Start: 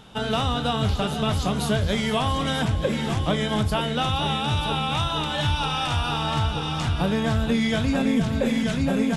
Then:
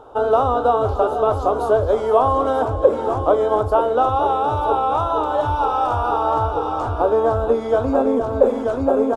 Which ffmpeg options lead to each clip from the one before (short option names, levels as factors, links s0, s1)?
-af "firequalizer=gain_entry='entry(110,0);entry(180,-27);entry(250,2);entry(440,14);entry(1300,8);entry(1900,-15);entry(6800,-11)':delay=0.05:min_phase=1,volume=0.891"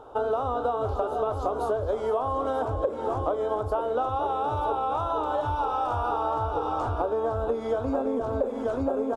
-af "acompressor=threshold=0.1:ratio=6,volume=0.668"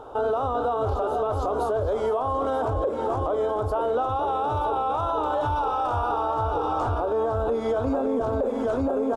-af "alimiter=limit=0.075:level=0:latency=1:release=17,volume=1.78"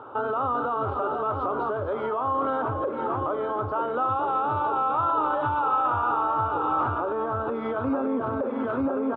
-af "highpass=f=110:w=0.5412,highpass=f=110:w=1.3066,equalizer=f=190:t=q:w=4:g=-4,equalizer=f=460:t=q:w=4:g=-7,equalizer=f=700:t=q:w=4:g=-8,equalizer=f=1300:t=q:w=4:g=6,lowpass=f=2800:w=0.5412,lowpass=f=2800:w=1.3066,volume=1.19"